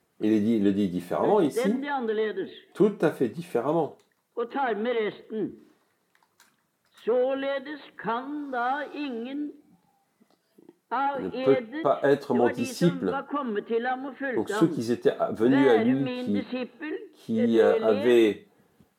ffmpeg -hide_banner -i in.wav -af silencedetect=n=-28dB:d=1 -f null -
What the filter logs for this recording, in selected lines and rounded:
silence_start: 5.47
silence_end: 7.07 | silence_duration: 1.61
silence_start: 9.45
silence_end: 10.92 | silence_duration: 1.47